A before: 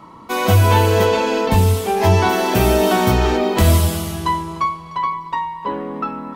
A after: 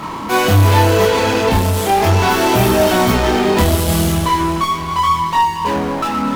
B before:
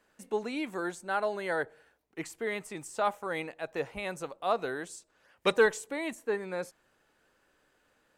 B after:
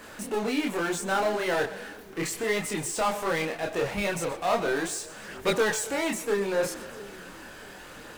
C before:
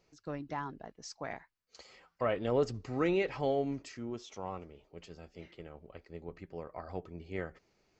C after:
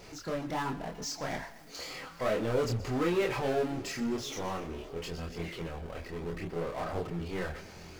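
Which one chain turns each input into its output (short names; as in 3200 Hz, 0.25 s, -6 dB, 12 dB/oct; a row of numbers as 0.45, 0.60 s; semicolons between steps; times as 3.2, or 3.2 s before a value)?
power-law curve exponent 0.5; split-band echo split 370 Hz, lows 0.667 s, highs 0.125 s, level -16 dB; chorus voices 2, 0.37 Hz, delay 27 ms, depth 3.6 ms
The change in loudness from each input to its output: +3.0, +4.5, +2.0 LU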